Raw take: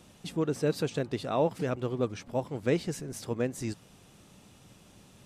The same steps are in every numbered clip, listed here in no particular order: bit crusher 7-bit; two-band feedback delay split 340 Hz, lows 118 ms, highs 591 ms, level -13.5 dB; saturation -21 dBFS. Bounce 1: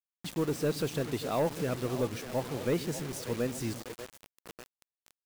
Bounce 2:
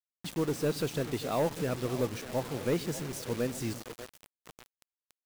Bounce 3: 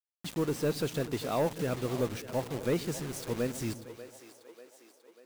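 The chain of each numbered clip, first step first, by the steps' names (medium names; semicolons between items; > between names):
two-band feedback delay > bit crusher > saturation; saturation > two-band feedback delay > bit crusher; bit crusher > saturation > two-band feedback delay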